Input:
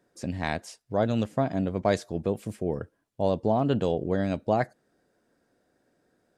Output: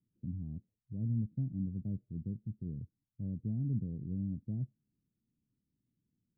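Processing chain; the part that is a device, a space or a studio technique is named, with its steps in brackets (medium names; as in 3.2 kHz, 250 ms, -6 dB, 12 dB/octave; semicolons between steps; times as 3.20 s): the neighbour's flat through the wall (low-pass 220 Hz 24 dB/octave; peaking EQ 120 Hz +5 dB 0.49 oct); trim -6.5 dB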